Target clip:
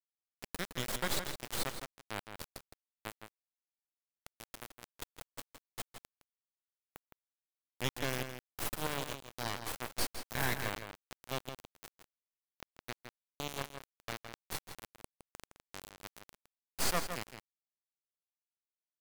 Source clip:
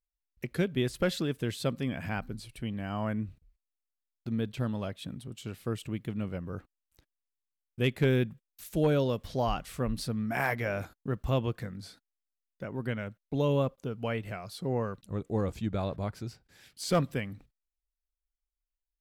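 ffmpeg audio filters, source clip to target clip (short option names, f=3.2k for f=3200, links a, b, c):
-filter_complex "[0:a]highpass=43,aderivative,bandreject=f=2.6k:w=5.2,asplit=2[a][b];[b]asplit=6[c][d][e][f][g][h];[c]adelay=141,afreqshift=70,volume=-12dB[i];[d]adelay=282,afreqshift=140,volume=-16.7dB[j];[e]adelay=423,afreqshift=210,volume=-21.5dB[k];[f]adelay=564,afreqshift=280,volume=-26.2dB[l];[g]adelay=705,afreqshift=350,volume=-30.9dB[m];[h]adelay=846,afreqshift=420,volume=-35.7dB[n];[i][j][k][l][m][n]amix=inputs=6:normalize=0[o];[a][o]amix=inputs=2:normalize=0,acompressor=mode=upward:threshold=-52dB:ratio=2.5,acrusher=bits=4:dc=4:mix=0:aa=0.000001,highshelf=f=2.3k:g=-9.5,asplit=2[p][q];[q]adelay=163.3,volume=-8dB,highshelf=f=4k:g=-3.67[r];[p][r]amix=inputs=2:normalize=0,volume=16.5dB"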